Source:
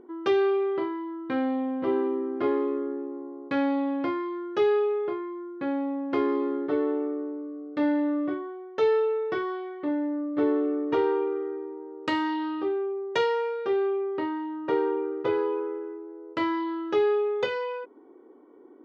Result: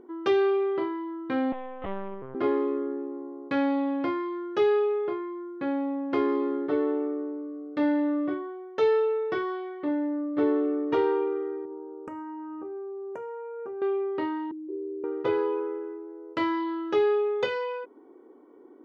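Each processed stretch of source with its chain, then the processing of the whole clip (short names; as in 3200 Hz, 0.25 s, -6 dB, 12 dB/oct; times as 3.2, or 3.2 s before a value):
1.52–2.35 HPF 500 Hz 24 dB/oct + LPC vocoder at 8 kHz pitch kept
11.65–13.82 bell 1900 Hz -9 dB 0.31 oct + compressor 10:1, threshold -34 dBFS + Butterworth band-stop 3900 Hz, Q 0.55
14.51–15.04 Butterworth band-pass 350 Hz, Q 6.8 + fast leveller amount 50%
whole clip: dry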